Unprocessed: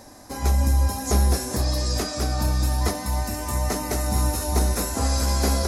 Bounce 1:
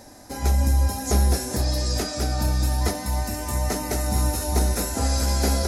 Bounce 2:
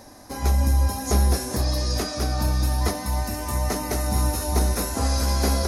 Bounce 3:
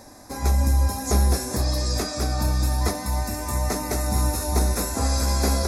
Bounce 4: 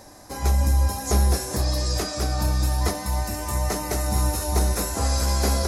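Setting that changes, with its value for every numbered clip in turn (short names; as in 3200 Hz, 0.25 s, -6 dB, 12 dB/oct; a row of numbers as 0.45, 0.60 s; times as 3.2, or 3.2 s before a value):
notch, frequency: 1100, 7600, 3000, 250 Hz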